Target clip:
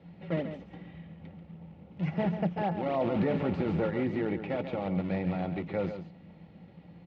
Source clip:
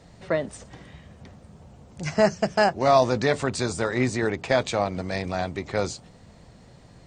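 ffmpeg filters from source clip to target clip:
ffmpeg -i in.wav -filter_complex "[0:a]asettb=1/sr,asplit=3[link_01][link_02][link_03];[link_01]atrim=end=2.864[link_04];[link_02]atrim=start=2.86:end=3.87,asetpts=PTS-STARTPTS,afade=type=in:duration=0.004:curve=qsin,afade=type=out:start_time=1.006:duration=0.004:curve=qsin,aeval=exprs='val(0)+0.5*0.0596*sgn(val(0))':channel_layout=same[link_05];[link_03]atrim=start=3.866[link_06];[link_04][link_05]acrossfade=duration=0.004:curve1=hsin:curve2=qsin[link_07];[link_07][link_06]acrossfade=duration=0.004:curve1=qsin:curve2=hsin,equalizer=frequency=170:width=4.9:gain=14.5,aecho=1:1:3.6:0.42,acrossover=split=1700[link_08][link_09];[link_09]acompressor=threshold=-40dB:ratio=6[link_10];[link_08][link_10]amix=inputs=2:normalize=0,alimiter=limit=-16dB:level=0:latency=1:release=13,asplit=2[link_11][link_12];[link_12]acrusher=samples=31:mix=1:aa=0.000001:lfo=1:lforange=49.6:lforate=3.6,volume=-7.5dB[link_13];[link_11][link_13]amix=inputs=2:normalize=0,highpass=110,equalizer=frequency=130:width_type=q:width=4:gain=-4,equalizer=frequency=240:width_type=q:width=4:gain=-7,equalizer=frequency=610:width_type=q:width=4:gain=-5,equalizer=frequency=1100:width_type=q:width=4:gain=-9,equalizer=frequency=1600:width_type=q:width=4:gain=-9,lowpass=frequency=2900:width=0.5412,lowpass=frequency=2900:width=1.3066,aecho=1:1:138:0.335,volume=-4dB" out.wav

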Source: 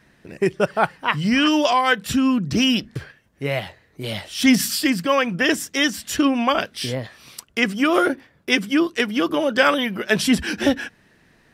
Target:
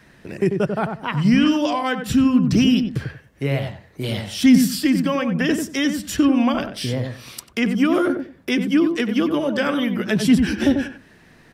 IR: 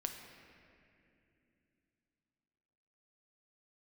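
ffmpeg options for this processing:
-filter_complex "[0:a]acrossover=split=310[link_01][link_02];[link_02]acompressor=threshold=-37dB:ratio=2[link_03];[link_01][link_03]amix=inputs=2:normalize=0,asplit=2[link_04][link_05];[link_05]adelay=93,lowpass=frequency=1100:poles=1,volume=-5dB,asplit=2[link_06][link_07];[link_07]adelay=93,lowpass=frequency=1100:poles=1,volume=0.22,asplit=2[link_08][link_09];[link_09]adelay=93,lowpass=frequency=1100:poles=1,volume=0.22[link_10];[link_04][link_06][link_08][link_10]amix=inputs=4:normalize=0,volume=5dB"

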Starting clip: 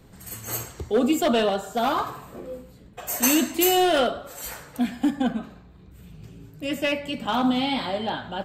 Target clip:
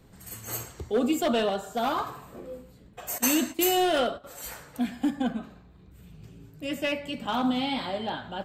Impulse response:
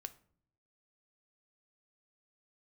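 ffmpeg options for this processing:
-filter_complex "[0:a]asettb=1/sr,asplit=3[link_01][link_02][link_03];[link_01]atrim=end=3.184[link_04];[link_02]atrim=start=3.18:end=4.24,asetpts=PTS-STARTPTS,afade=type=in:duration=0.004:curve=qsin,afade=type=out:start_time=1.056:duration=0.004:curve=qsin,agate=range=-12dB:threshold=-29dB:ratio=16:detection=peak[link_05];[link_03]atrim=start=4.236[link_06];[link_04][link_05]acrossfade=duration=0.004:curve1=hsin:curve2=qsin[link_07];[link_07][link_06]acrossfade=duration=0.004:curve1=qsin:curve2=hsin,volume=-4dB"

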